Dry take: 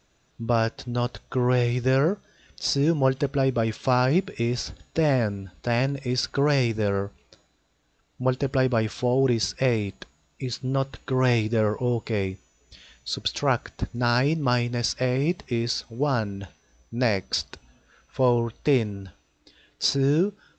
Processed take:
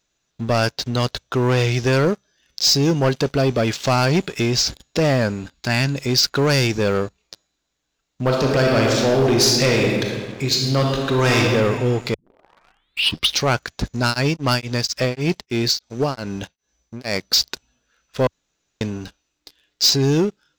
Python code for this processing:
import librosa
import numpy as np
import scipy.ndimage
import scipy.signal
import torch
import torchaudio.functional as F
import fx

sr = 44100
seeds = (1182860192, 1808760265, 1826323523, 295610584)

y = fx.peak_eq(x, sr, hz=510.0, db=-12.0, octaves=0.57, at=(5.54, 5.95))
y = fx.reverb_throw(y, sr, start_s=8.22, length_s=3.17, rt60_s=1.8, drr_db=0.0)
y = fx.tremolo_abs(y, sr, hz=fx.line((14.03, 4.7), (17.28, 1.9)), at=(14.03, 17.28), fade=0.02)
y = fx.edit(y, sr, fx.tape_start(start_s=12.14, length_s=1.33),
    fx.room_tone_fill(start_s=18.27, length_s=0.54), tone=tone)
y = fx.high_shelf(y, sr, hz=2600.0, db=10.5)
y = fx.leveller(y, sr, passes=3)
y = fx.peak_eq(y, sr, hz=85.0, db=-9.0, octaves=0.49)
y = y * 10.0 ** (-5.0 / 20.0)